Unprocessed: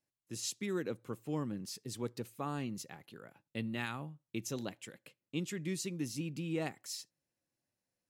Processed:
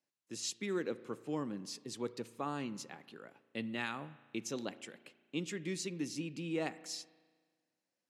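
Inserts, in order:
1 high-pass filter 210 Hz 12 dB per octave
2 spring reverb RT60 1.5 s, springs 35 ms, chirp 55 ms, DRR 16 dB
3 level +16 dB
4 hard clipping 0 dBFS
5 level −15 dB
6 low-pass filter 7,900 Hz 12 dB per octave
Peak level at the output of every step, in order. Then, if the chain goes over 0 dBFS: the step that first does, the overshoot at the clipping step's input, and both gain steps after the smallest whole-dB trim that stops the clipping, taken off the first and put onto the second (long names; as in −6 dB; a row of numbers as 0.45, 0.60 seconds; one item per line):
−21.5, −21.5, −5.5, −5.5, −20.5, −20.5 dBFS
no step passes full scale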